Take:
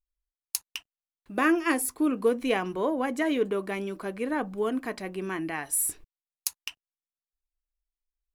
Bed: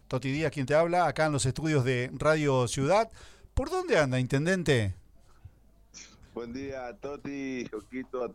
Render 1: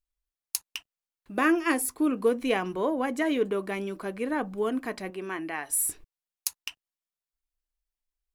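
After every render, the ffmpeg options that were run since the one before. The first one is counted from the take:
-filter_complex "[0:a]asettb=1/sr,asplit=3[s0][s1][s2];[s0]atrim=end=5.104[s3];[s1]atrim=start=5.1:end=5.7,asetpts=PTS-STARTPTS,afade=t=in:d=0.004:c=qsin,afade=t=out:st=0.596:d=0.004:c=qsin,bass=f=250:g=-10,treble=f=4000:g=-4[s4];[s2]atrim=start=5.696[s5];[s3][s4]acrossfade=d=0.004:c1=hsin:c2=qsin[s6];[s6][s5]acrossfade=d=0.004:c1=qsin:c2=hsin"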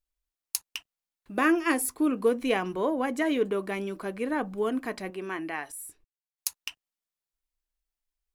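-filter_complex "[0:a]asplit=3[s0][s1][s2];[s0]atrim=end=5.72,asetpts=PTS-STARTPTS,afade=t=out:st=5.49:d=0.23:c=log:silence=0.188365[s3];[s1]atrim=start=5.72:end=6.38,asetpts=PTS-STARTPTS,volume=0.188[s4];[s2]atrim=start=6.38,asetpts=PTS-STARTPTS,afade=t=in:d=0.23:c=log:silence=0.188365[s5];[s3][s4][s5]concat=n=3:v=0:a=1"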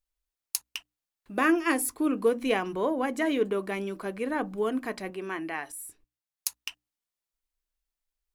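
-af "bandreject=f=60:t=h:w=6,bandreject=f=120:t=h:w=6,bandreject=f=180:t=h:w=6,bandreject=f=240:t=h:w=6,bandreject=f=300:t=h:w=6"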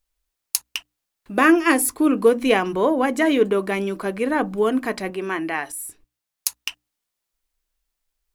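-af "volume=2.66,alimiter=limit=0.891:level=0:latency=1"

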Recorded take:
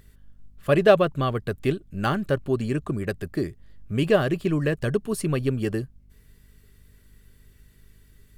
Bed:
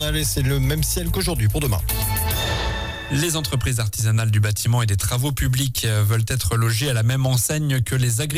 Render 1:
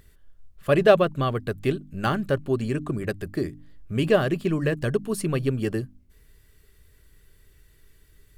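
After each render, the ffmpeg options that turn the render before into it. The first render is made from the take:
-af "bandreject=f=50:t=h:w=4,bandreject=f=100:t=h:w=4,bandreject=f=150:t=h:w=4,bandreject=f=200:t=h:w=4,bandreject=f=250:t=h:w=4,bandreject=f=300:t=h:w=4"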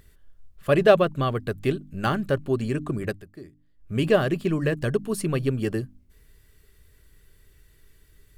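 -filter_complex "[0:a]asplit=3[s0][s1][s2];[s0]atrim=end=3.25,asetpts=PTS-STARTPTS,afade=t=out:st=3.08:d=0.17:silence=0.16788[s3];[s1]atrim=start=3.25:end=3.77,asetpts=PTS-STARTPTS,volume=0.168[s4];[s2]atrim=start=3.77,asetpts=PTS-STARTPTS,afade=t=in:d=0.17:silence=0.16788[s5];[s3][s4][s5]concat=n=3:v=0:a=1"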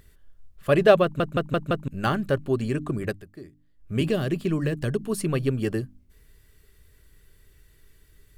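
-filter_complex "[0:a]asettb=1/sr,asplit=3[s0][s1][s2];[s0]atrim=end=4.014[s3];[s1]atrim=start=4.01:end=5.01,asetpts=PTS-STARTPTS,afade=t=in:d=0.004:c=qsin,afade=t=out:st=0.996:d=0.004:c=qsin,acrossover=split=380|3000[s4][s5][s6];[s5]acompressor=threshold=0.0316:ratio=6:attack=3.2:release=140:knee=2.83:detection=peak[s7];[s4][s7][s6]amix=inputs=3:normalize=0[s8];[s2]atrim=start=5.006[s9];[s3][s8]acrossfade=d=0.004:c1=hsin:c2=qsin[s10];[s10][s9]acrossfade=d=0.004:c1=qsin:c2=hsin,asplit=6[s11][s12][s13][s14][s15][s16];[s11]atrim=end=1.202[s17];[s12]atrim=start=1.028:end=1.202[s18];[s13]atrim=start=1.028:end=1.202[s19];[s14]atrim=start=1.028:end=1.202[s20];[s15]atrim=start=1.028:end=1.202[s21];[s16]atrim=start=1.878[s22];[s17][s18]acrossfade=d=0.004:c1=hsin:c2=hsin[s23];[s23][s19]acrossfade=d=0.004:c1=hsin:c2=hsin[s24];[s24][s20]acrossfade=d=0.004:c1=hsin:c2=hsin[s25];[s25][s21]acrossfade=d=0.004:c1=hsin:c2=hsin[s26];[s26][s22]acrossfade=d=0.004:c1=hsin:c2=hsin"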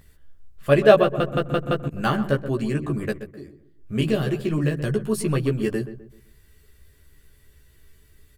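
-filter_complex "[0:a]asplit=2[s0][s1];[s1]adelay=14,volume=0.708[s2];[s0][s2]amix=inputs=2:normalize=0,asplit=2[s3][s4];[s4]adelay=128,lowpass=f=1500:p=1,volume=0.266,asplit=2[s5][s6];[s6]adelay=128,lowpass=f=1500:p=1,volume=0.38,asplit=2[s7][s8];[s8]adelay=128,lowpass=f=1500:p=1,volume=0.38,asplit=2[s9][s10];[s10]adelay=128,lowpass=f=1500:p=1,volume=0.38[s11];[s3][s5][s7][s9][s11]amix=inputs=5:normalize=0"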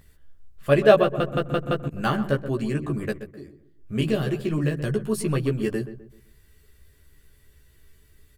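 -af "volume=0.841"

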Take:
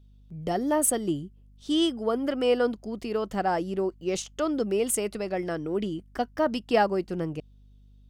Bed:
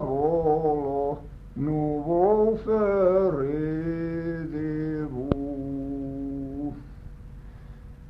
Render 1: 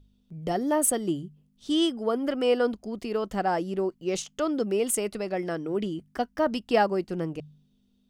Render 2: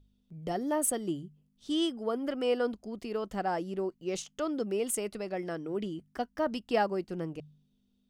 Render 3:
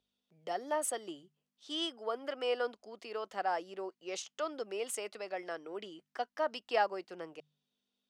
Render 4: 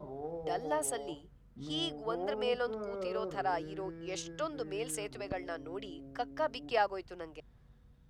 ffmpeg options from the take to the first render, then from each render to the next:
-af "bandreject=f=50:t=h:w=4,bandreject=f=100:t=h:w=4,bandreject=f=150:t=h:w=4"
-af "volume=0.531"
-filter_complex "[0:a]highpass=f=230:p=1,acrossover=split=450 7400:gain=0.126 1 0.251[s0][s1][s2];[s0][s1][s2]amix=inputs=3:normalize=0"
-filter_complex "[1:a]volume=0.133[s0];[0:a][s0]amix=inputs=2:normalize=0"

